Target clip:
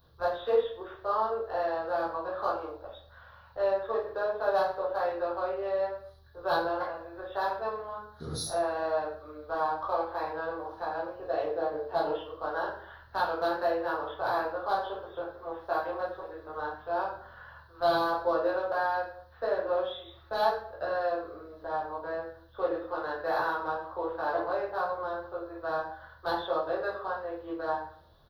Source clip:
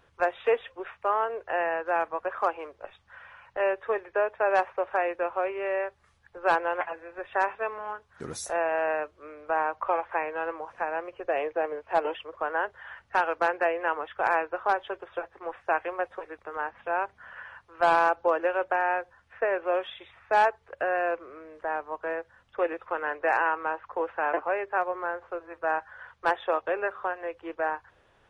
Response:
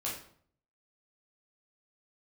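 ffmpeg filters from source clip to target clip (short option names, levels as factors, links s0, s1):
-filter_complex "[0:a]asplit=2[s0][s1];[s1]asoftclip=type=tanh:threshold=0.0398,volume=0.316[s2];[s0][s2]amix=inputs=2:normalize=0,firequalizer=gain_entry='entry(180,0);entry(260,-6);entry(1500,-9);entry(2400,-24);entry(4000,8);entry(7900,-23);entry(12000,12)':delay=0.05:min_phase=1[s3];[1:a]atrim=start_sample=2205[s4];[s3][s4]afir=irnorm=-1:irlink=0"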